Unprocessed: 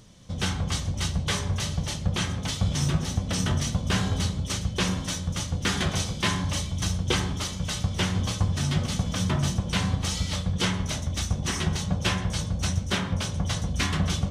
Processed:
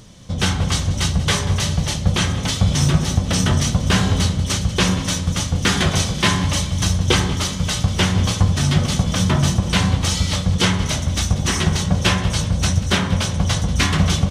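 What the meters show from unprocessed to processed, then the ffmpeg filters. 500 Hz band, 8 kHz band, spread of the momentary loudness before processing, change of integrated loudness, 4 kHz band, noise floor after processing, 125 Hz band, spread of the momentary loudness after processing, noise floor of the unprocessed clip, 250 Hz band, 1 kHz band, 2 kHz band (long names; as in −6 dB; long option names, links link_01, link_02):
+8.5 dB, +8.5 dB, 4 LU, +8.5 dB, +8.5 dB, −26 dBFS, +8.5 dB, 3 LU, −34 dBFS, +8.5 dB, +8.5 dB, +8.5 dB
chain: -af "aecho=1:1:188|376|564|752|940:0.158|0.0824|0.0429|0.0223|0.0116,volume=8.5dB"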